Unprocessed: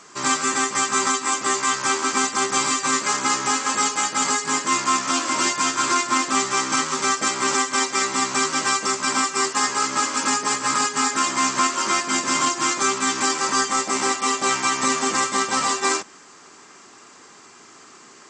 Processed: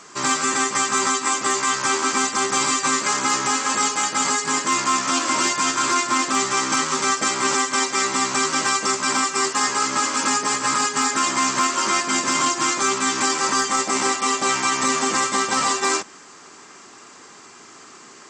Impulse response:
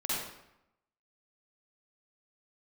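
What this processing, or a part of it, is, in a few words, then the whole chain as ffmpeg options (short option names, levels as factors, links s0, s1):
clipper into limiter: -af "asoftclip=type=hard:threshold=0.316,alimiter=limit=0.224:level=0:latency=1:release=32,volume=1.33"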